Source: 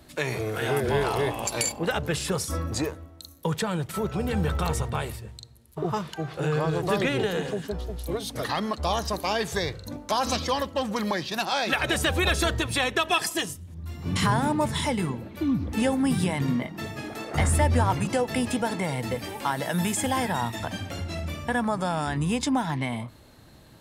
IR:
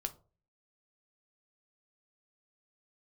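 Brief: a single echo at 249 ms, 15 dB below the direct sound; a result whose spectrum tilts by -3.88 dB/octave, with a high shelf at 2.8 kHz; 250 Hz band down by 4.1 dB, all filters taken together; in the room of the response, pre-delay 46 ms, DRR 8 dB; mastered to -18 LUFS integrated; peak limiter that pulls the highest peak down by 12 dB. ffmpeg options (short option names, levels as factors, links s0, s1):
-filter_complex "[0:a]equalizer=f=250:t=o:g=-5.5,highshelf=f=2800:g=4.5,alimiter=limit=0.106:level=0:latency=1,aecho=1:1:249:0.178,asplit=2[s0][s1];[1:a]atrim=start_sample=2205,adelay=46[s2];[s1][s2]afir=irnorm=-1:irlink=0,volume=0.422[s3];[s0][s3]amix=inputs=2:normalize=0,volume=3.76"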